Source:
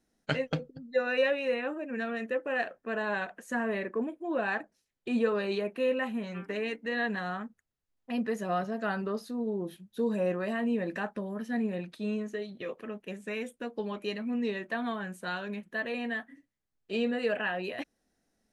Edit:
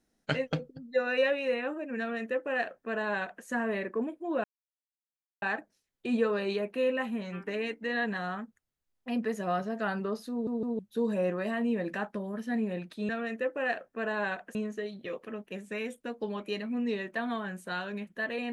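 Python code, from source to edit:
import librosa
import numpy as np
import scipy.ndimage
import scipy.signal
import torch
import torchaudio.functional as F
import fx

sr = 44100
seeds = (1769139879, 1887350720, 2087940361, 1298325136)

y = fx.edit(x, sr, fx.duplicate(start_s=1.99, length_s=1.46, to_s=12.11),
    fx.insert_silence(at_s=4.44, length_s=0.98),
    fx.stutter_over(start_s=9.33, slice_s=0.16, count=3), tone=tone)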